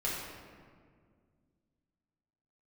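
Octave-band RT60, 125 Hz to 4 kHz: 2.8, 2.8, 2.2, 1.7, 1.5, 1.1 s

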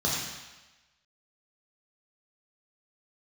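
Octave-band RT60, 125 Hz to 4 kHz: 0.90, 0.95, 1.1, 1.2, 1.2, 1.2 s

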